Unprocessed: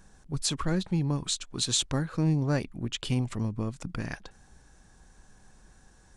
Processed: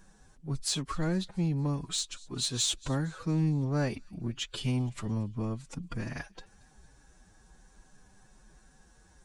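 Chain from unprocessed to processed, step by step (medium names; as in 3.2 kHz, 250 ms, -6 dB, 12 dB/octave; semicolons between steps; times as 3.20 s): feedback echo behind a high-pass 153 ms, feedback 54%, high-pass 2.7 kHz, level -23 dB; time stretch by phase-locked vocoder 1.5×; in parallel at -3 dB: saturation -24 dBFS, distortion -14 dB; on the sum: trim -6 dB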